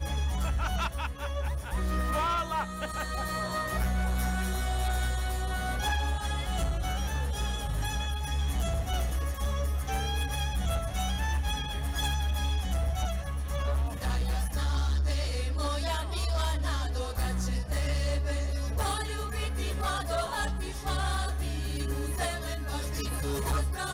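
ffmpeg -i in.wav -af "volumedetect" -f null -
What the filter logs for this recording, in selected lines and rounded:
mean_volume: -29.6 dB
max_volume: -23.8 dB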